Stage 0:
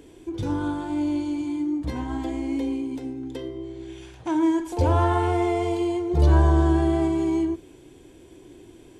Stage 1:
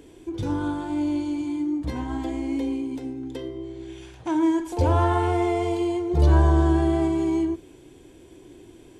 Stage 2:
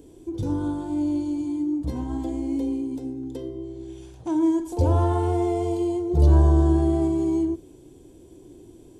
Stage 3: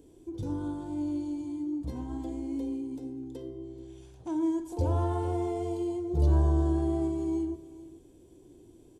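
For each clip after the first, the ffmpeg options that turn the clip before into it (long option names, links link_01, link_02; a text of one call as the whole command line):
ffmpeg -i in.wav -af anull out.wav
ffmpeg -i in.wav -af "equalizer=frequency=2000:width=0.65:gain=-14,volume=1.5dB" out.wav
ffmpeg -i in.wav -af "aecho=1:1:433:0.133,volume=-7.5dB" out.wav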